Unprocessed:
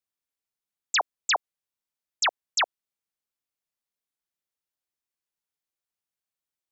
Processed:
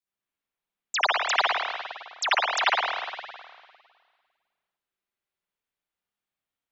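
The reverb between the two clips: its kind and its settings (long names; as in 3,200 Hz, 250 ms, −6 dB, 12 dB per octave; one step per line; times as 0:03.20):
spring reverb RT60 1.8 s, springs 50/55 ms, chirp 50 ms, DRR −9.5 dB
level −4.5 dB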